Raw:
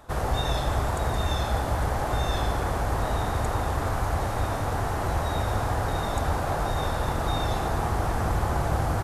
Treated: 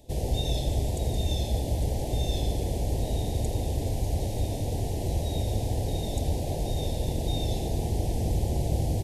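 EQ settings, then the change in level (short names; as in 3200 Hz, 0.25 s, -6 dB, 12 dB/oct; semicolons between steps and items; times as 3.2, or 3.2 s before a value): Butterworth band-stop 1300 Hz, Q 0.52; 0.0 dB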